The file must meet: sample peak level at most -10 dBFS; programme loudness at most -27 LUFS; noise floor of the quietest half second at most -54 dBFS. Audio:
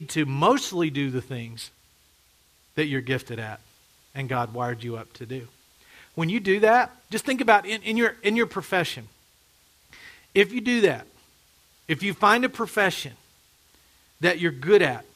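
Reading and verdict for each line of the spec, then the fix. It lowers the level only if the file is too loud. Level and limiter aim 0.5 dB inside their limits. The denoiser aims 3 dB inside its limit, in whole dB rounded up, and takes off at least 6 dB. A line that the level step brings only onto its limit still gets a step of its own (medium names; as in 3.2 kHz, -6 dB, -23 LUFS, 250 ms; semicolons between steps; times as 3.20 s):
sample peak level -2.0 dBFS: fail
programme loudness -23.5 LUFS: fail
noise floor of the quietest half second -61 dBFS: pass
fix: trim -4 dB; peak limiter -10.5 dBFS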